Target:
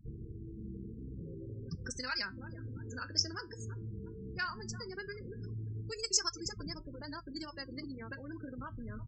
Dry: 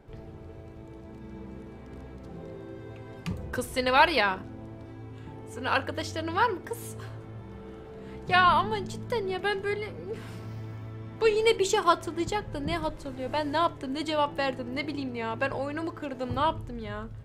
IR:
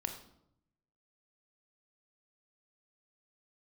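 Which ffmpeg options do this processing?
-filter_complex "[0:a]aecho=1:1:654|1308|1962|2616:0.112|0.0527|0.0248|0.0116,acrossover=split=1500[link_01][link_02];[link_01]acompressor=threshold=-40dB:ratio=6[link_03];[link_03][link_02]amix=inputs=2:normalize=0,afftdn=noise_reduction=18:noise_floor=-47,atempo=1.9,areverse,acompressor=mode=upward:threshold=-49dB:ratio=2.5,areverse,aeval=exprs='val(0)+0.001*(sin(2*PI*50*n/s)+sin(2*PI*2*50*n/s)/2+sin(2*PI*3*50*n/s)/3+sin(2*PI*4*50*n/s)/4+sin(2*PI*5*50*n/s)/5)':channel_layout=same,firequalizer=gain_entry='entry(100,0);entry(290,-3);entry(800,-17);entry(1500,-7);entry(2200,-17);entry(3600,-27);entry(5200,14);entry(11000,-25)':delay=0.05:min_phase=1,afftfilt=real='re*gte(hypot(re,im),0.00501)':imag='im*gte(hypot(re,im),0.00501)':win_size=1024:overlap=0.75,flanger=delay=5.7:depth=3.9:regen=-74:speed=0.14:shape=sinusoidal,volume=7dB"

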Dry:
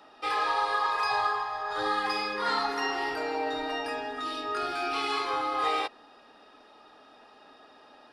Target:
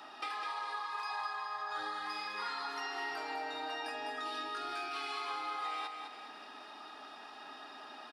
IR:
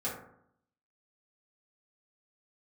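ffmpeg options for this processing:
-filter_complex "[0:a]highpass=frequency=380:poles=1,equalizer=frequency=500:width=3.3:gain=-11.5,acompressor=threshold=-44dB:ratio=8,asplit=2[link_01][link_02];[link_02]aecho=0:1:204|408|612|816|1020|1224:0.501|0.236|0.111|0.052|0.0245|0.0115[link_03];[link_01][link_03]amix=inputs=2:normalize=0,volume=5.5dB"

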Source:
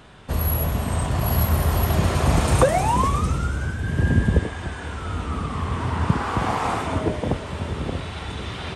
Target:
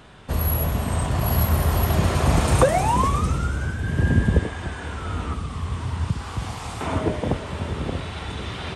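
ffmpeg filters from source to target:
ffmpeg -i in.wav -filter_complex "[0:a]asettb=1/sr,asplit=3[link_01][link_02][link_03];[link_01]atrim=end=5.334[link_04];[link_02]atrim=start=5.33:end=6.81,asetpts=PTS-STARTPTS,afade=type=in:duration=0.004:curve=qsin,afade=type=out:start_time=1.476:duration=0.004:curve=qsin,acrossover=split=140|3000[link_05][link_06][link_07];[link_06]acompressor=threshold=-35dB:ratio=6[link_08];[link_05][link_08][link_07]amix=inputs=3:normalize=0[link_09];[link_03]atrim=start=6.806[link_10];[link_04][link_09]acrossfade=duration=0.004:curve1=hsin:curve2=qsin[link_11];[link_11][link_10]acrossfade=duration=0.004:curve1=qsin:curve2=hsin" out.wav

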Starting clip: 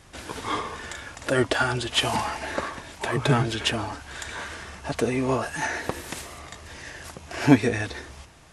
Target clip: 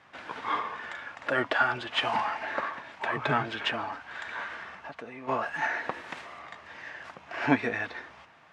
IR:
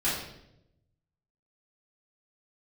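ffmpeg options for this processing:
-filter_complex "[0:a]equalizer=frequency=380:width=0.96:gain=-10.5,asplit=3[link_01][link_02][link_03];[link_01]afade=type=out:start_time=4.75:duration=0.02[link_04];[link_02]acompressor=threshold=-39dB:ratio=5,afade=type=in:start_time=4.75:duration=0.02,afade=type=out:start_time=5.27:duration=0.02[link_05];[link_03]afade=type=in:start_time=5.27:duration=0.02[link_06];[link_04][link_05][link_06]amix=inputs=3:normalize=0,highpass=290,lowpass=2100,volume=2dB"

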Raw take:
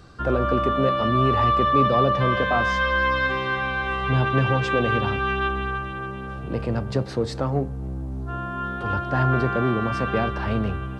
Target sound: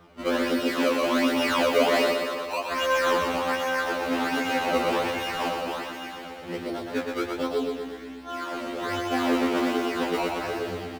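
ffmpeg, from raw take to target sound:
ffmpeg -i in.wav -filter_complex "[0:a]asettb=1/sr,asplit=3[link_01][link_02][link_03];[link_01]atrim=end=2.114[link_04];[link_02]atrim=start=2.11:end=2.72,asetpts=PTS-STARTPTS,afade=type=in:duration=0.004:curve=qsin,afade=type=out:start_time=0.606:duration=0.004:curve=qsin,asplit=3[link_05][link_06][link_07];[link_05]bandpass=frequency=730:width_type=q:width=8,volume=0dB[link_08];[link_06]bandpass=frequency=1090:width_type=q:width=8,volume=-6dB[link_09];[link_07]bandpass=frequency=2440:width_type=q:width=8,volume=-9dB[link_10];[link_08][link_09][link_10]amix=inputs=3:normalize=0[link_11];[link_03]atrim=start=2.716[link_12];[link_04][link_11]acrossfade=duration=0.004:curve1=hsin:curve2=qsin[link_13];[link_13][link_12]acrossfade=duration=0.004:curve1=qsin:curve2=hsin,acrusher=samples=18:mix=1:aa=0.000001:lfo=1:lforange=18:lforate=1.3,acrossover=split=190 4200:gain=0.224 1 0.251[link_14][link_15][link_16];[link_14][link_15][link_16]amix=inputs=3:normalize=0,asplit=2[link_17][link_18];[link_18]aecho=0:1:120|240|360|480|600|720|840|960:0.596|0.351|0.207|0.122|0.0722|0.0426|0.0251|0.0148[link_19];[link_17][link_19]amix=inputs=2:normalize=0,afftfilt=real='re*2*eq(mod(b,4),0)':imag='im*2*eq(mod(b,4),0)':win_size=2048:overlap=0.75" out.wav

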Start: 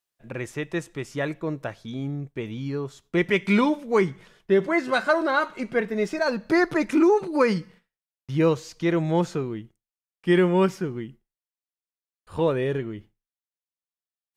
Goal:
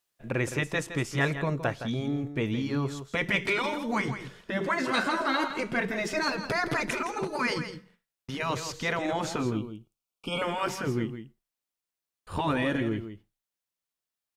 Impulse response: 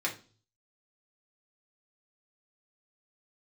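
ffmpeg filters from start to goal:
-filter_complex "[0:a]asettb=1/sr,asplit=3[link_01][link_02][link_03];[link_01]atrim=end=9.404[link_04];[link_02]atrim=start=9.4:end=10.42,asetpts=PTS-STARTPTS,afade=type=in:duration=0.004:curve=qsin,afade=type=out:start_time=1.016:duration=0.004:curve=qsin,asuperstop=centerf=1800:order=20:qfactor=2.4[link_05];[link_03]atrim=start=10.416[link_06];[link_04][link_05]acrossfade=duration=0.004:curve1=hsin:curve2=qsin[link_07];[link_07][link_06]acrossfade=duration=0.004:curve1=qsin:curve2=hsin,alimiter=limit=-16.5dB:level=0:latency=1:release=22,afftfilt=real='re*lt(hypot(re,im),0.282)':imag='im*lt(hypot(re,im),0.282)':win_size=1024:overlap=0.75,aecho=1:1:165:0.299,volume=4.5dB"

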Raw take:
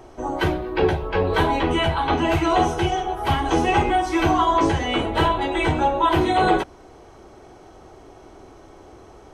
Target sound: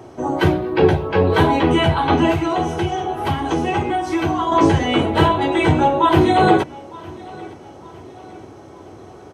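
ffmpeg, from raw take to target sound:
ffmpeg -i in.wav -filter_complex "[0:a]highpass=frequency=93:width=0.5412,highpass=frequency=93:width=1.3066,lowshelf=frequency=320:gain=8,asettb=1/sr,asplit=3[link_01][link_02][link_03];[link_01]atrim=end=2.314[link_04];[link_02]atrim=start=2.31:end=4.52,asetpts=PTS-STARTPTS,afade=type=in:duration=0.004:curve=qsin,afade=type=out:start_time=2.206:duration=0.004:curve=qsin,acompressor=threshold=-22dB:ratio=2.5[link_05];[link_03]atrim=start=4.516[link_06];[link_04][link_05]acrossfade=duration=0.004:curve1=hsin:curve2=qsin[link_07];[link_07][link_06]acrossfade=duration=0.004:curve1=qsin:curve2=hsin,aecho=1:1:910|1820|2730:0.0794|0.0357|0.0161,volume=2.5dB" out.wav

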